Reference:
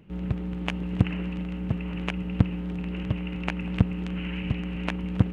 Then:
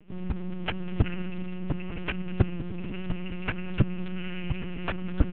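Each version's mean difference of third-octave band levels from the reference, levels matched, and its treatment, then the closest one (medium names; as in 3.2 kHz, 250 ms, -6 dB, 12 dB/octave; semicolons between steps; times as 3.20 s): 3.5 dB: high-pass 79 Hz 6 dB/octave; dynamic bell 1.5 kHz, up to +6 dB, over -55 dBFS, Q 5.8; on a send: delay 204 ms -17.5 dB; on the sum: LPC vocoder at 8 kHz pitch kept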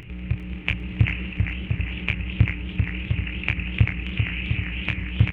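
5.5 dB: FFT filter 120 Hz 0 dB, 200 Hz -15 dB, 350 Hz -9 dB, 570 Hz -12 dB, 910 Hz -11 dB, 1.5 kHz -7 dB, 2.4 kHz +7 dB, 4.5 kHz -14 dB; upward compressor, threshold -36 dBFS; doubling 27 ms -7 dB; modulated delay 395 ms, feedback 50%, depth 171 cents, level -5 dB; trim +4.5 dB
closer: first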